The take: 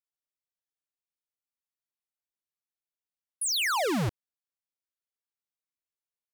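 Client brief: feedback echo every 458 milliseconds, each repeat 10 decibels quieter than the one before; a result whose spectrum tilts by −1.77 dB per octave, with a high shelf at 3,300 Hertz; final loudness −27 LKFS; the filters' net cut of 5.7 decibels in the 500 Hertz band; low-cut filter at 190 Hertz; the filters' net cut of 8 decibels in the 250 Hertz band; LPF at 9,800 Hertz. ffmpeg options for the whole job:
ffmpeg -i in.wav -af "highpass=190,lowpass=9800,equalizer=frequency=250:width_type=o:gain=-7,equalizer=frequency=500:width_type=o:gain=-5.5,highshelf=frequency=3300:gain=9,aecho=1:1:458|916|1374|1832:0.316|0.101|0.0324|0.0104,volume=-2.5dB" out.wav

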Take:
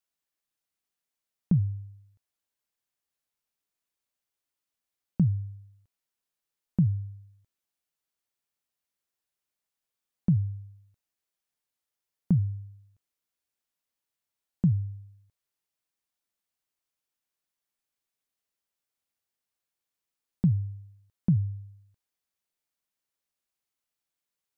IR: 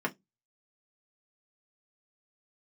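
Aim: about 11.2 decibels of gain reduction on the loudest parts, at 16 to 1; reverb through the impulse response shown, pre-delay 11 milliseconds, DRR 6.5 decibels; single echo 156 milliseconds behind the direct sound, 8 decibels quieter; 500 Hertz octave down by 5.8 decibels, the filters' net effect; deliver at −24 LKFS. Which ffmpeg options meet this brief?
-filter_complex "[0:a]equalizer=frequency=500:width_type=o:gain=-8.5,acompressor=threshold=-30dB:ratio=16,aecho=1:1:156:0.398,asplit=2[link_01][link_02];[1:a]atrim=start_sample=2205,adelay=11[link_03];[link_02][link_03]afir=irnorm=-1:irlink=0,volume=-14dB[link_04];[link_01][link_04]amix=inputs=2:normalize=0,volume=14dB"

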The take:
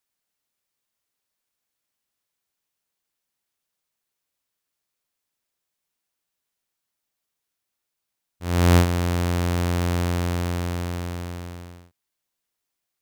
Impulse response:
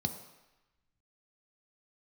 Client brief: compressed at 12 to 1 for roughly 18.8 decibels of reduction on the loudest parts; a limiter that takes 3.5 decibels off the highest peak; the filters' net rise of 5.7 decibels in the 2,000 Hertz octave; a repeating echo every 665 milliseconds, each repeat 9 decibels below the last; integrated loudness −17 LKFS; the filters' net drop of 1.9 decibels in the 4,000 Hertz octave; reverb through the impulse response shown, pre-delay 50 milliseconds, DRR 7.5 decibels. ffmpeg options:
-filter_complex "[0:a]equalizer=frequency=2000:width_type=o:gain=8.5,equalizer=frequency=4000:width_type=o:gain=-6,acompressor=threshold=-31dB:ratio=12,alimiter=level_in=2dB:limit=-24dB:level=0:latency=1,volume=-2dB,aecho=1:1:665|1330|1995|2660:0.355|0.124|0.0435|0.0152,asplit=2[link_01][link_02];[1:a]atrim=start_sample=2205,adelay=50[link_03];[link_02][link_03]afir=irnorm=-1:irlink=0,volume=-10dB[link_04];[link_01][link_04]amix=inputs=2:normalize=0,volume=16dB"

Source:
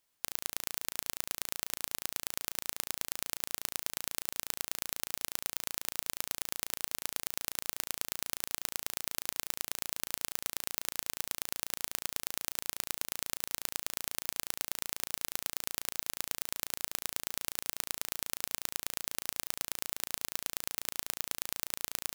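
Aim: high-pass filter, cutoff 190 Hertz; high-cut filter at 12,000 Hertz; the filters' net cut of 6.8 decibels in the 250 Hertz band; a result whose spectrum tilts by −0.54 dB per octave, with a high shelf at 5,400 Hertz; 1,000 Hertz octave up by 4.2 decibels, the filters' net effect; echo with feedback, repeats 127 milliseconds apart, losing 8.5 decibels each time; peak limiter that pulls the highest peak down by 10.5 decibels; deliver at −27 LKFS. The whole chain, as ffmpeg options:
ffmpeg -i in.wav -af "highpass=190,lowpass=12000,equalizer=frequency=250:width_type=o:gain=-8,equalizer=frequency=1000:width_type=o:gain=6,highshelf=frequency=5400:gain=-7.5,alimiter=limit=-22.5dB:level=0:latency=1,aecho=1:1:127|254|381|508:0.376|0.143|0.0543|0.0206,volume=21.5dB" out.wav

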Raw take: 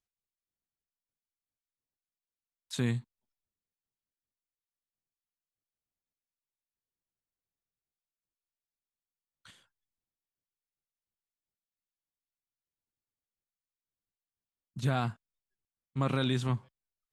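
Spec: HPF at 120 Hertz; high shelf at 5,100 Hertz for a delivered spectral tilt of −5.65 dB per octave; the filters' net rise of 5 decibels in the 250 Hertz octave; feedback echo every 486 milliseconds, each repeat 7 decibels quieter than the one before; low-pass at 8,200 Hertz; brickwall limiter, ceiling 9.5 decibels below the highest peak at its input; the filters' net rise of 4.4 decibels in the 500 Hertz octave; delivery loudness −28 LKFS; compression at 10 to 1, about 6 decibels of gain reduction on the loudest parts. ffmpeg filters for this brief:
ffmpeg -i in.wav -af "highpass=120,lowpass=8200,equalizer=frequency=250:width_type=o:gain=5,equalizer=frequency=500:width_type=o:gain=4,highshelf=frequency=5100:gain=4.5,acompressor=threshold=-28dB:ratio=10,alimiter=level_in=5.5dB:limit=-24dB:level=0:latency=1,volume=-5.5dB,aecho=1:1:486|972|1458|1944|2430:0.447|0.201|0.0905|0.0407|0.0183,volume=14.5dB" out.wav

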